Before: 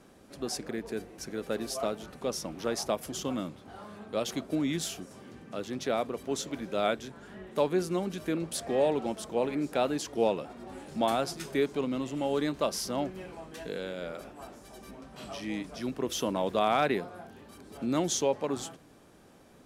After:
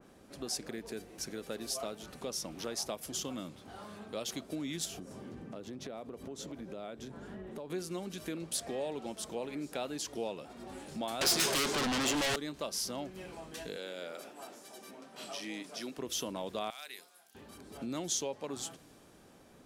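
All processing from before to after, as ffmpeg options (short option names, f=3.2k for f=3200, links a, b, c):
-filter_complex "[0:a]asettb=1/sr,asplit=3[a][b][c];[a]atrim=end=4.854[d];[b]atrim=start=4.85:end=7.7,asetpts=PTS-STARTPTS,afade=t=in:d=0.004:c=qsin,afade=t=out:st=2.846:d=0.004:c=qsin,tiltshelf=f=1.3k:g=6,acompressor=threshold=-38dB:ratio=4:attack=3.2:release=140:knee=1:detection=peak[e];[c]atrim=start=7.696[f];[d][e]acrossfade=d=0.004:c1=hsin:c2=qsin[g];[g][f]acrossfade=d=0.004:c1=qsin:c2=hsin,asettb=1/sr,asplit=3[h][i][j];[h]atrim=end=11.214[k];[i]atrim=start=11.21:end=12.36,asetpts=PTS-STARTPTS,afade=t=in:d=0.004:c=qsin,afade=t=out:st=1.146:d=0.004:c=qsin,asplit=2[l][m];[m]highpass=f=720:p=1,volume=21dB,asoftclip=type=tanh:threshold=-16.5dB[n];[l][n]amix=inputs=2:normalize=0,lowpass=f=4.6k:p=1,volume=-6dB,aeval=exprs='0.15*sin(PI/2*3.55*val(0)/0.15)':c=same[o];[j]atrim=start=12.356[p];[k][o]acrossfade=d=0.004:c1=hsin:c2=qsin[q];[q][p]acrossfade=d=0.004:c1=qsin:c2=hsin,asettb=1/sr,asplit=3[r][s][t];[r]atrim=end=13.764[u];[s]atrim=start=13.76:end=15.98,asetpts=PTS-STARTPTS,afade=t=in:d=0.004:c=qsin,afade=t=out:st=2.216:d=0.004:c=qsin,highpass=270,bandreject=f=1.1k:w=22[v];[t]atrim=start=15.976[w];[u][v]acrossfade=d=0.004:c1=hsin:c2=qsin[x];[x][w]acrossfade=d=0.004:c1=qsin:c2=hsin,asettb=1/sr,asplit=3[y][z][aa];[y]atrim=end=16.704[ab];[z]atrim=start=16.7:end=17.35,asetpts=PTS-STARTPTS,afade=t=in:d=0.004:c=qsin,afade=t=out:st=0.646:d=0.004:c=qsin,aderivative,bandreject=f=50:t=h:w=6,bandreject=f=100:t=h:w=6,bandreject=f=150:t=h:w=6,bandreject=f=200:t=h:w=6,bandreject=f=250:t=h:w=6,bandreject=f=300:t=h:w=6,bandreject=f=350:t=h:w=6,bandreject=f=400:t=h:w=6,bandreject=f=450:t=h:w=6,bandreject=f=500:t=h:w=6[ac];[aa]atrim=start=17.346[ad];[ab][ac]acrossfade=d=0.004:c1=hsin:c2=qsin[ae];[ae][ad]acrossfade=d=0.004:c1=qsin:c2=hsin,acompressor=threshold=-39dB:ratio=2,adynamicequalizer=threshold=0.00158:dfrequency=2600:dqfactor=0.7:tfrequency=2600:tqfactor=0.7:attack=5:release=100:ratio=0.375:range=3.5:mode=boostabove:tftype=highshelf,volume=-2dB"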